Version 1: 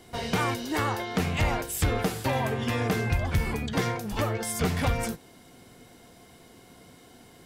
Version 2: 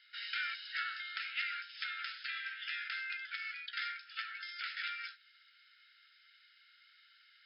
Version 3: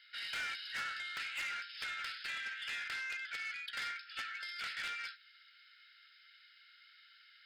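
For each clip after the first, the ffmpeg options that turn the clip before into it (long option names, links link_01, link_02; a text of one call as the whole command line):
ffmpeg -i in.wav -af "afftfilt=real='re*between(b*sr/4096,1300,5300)':imag='im*between(b*sr/4096,1300,5300)':win_size=4096:overlap=0.75,volume=-4.5dB" out.wav
ffmpeg -i in.wav -af "asoftclip=type=tanh:threshold=-37.5dB,volume=2.5dB" out.wav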